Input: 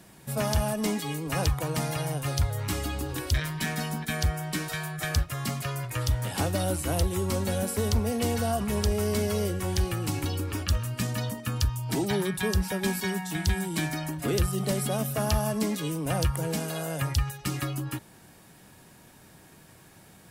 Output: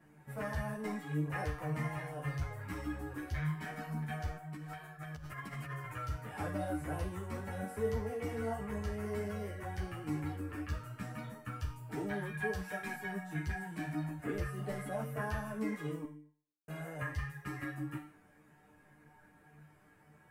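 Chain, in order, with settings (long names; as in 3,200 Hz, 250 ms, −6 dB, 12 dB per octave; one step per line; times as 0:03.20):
high shelf with overshoot 2,700 Hz −12.5 dB, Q 1.5
0:16.05–0:16.68: silence
tuned comb filter 150 Hz, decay 0.51 s, harmonics all, mix 90%
0:04.37–0:05.94: compressor whose output falls as the input rises −47 dBFS, ratio −1
0:12.53–0:12.95: tilt shelving filter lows −4.5 dB, about 760 Hz
string-ensemble chorus
level +6.5 dB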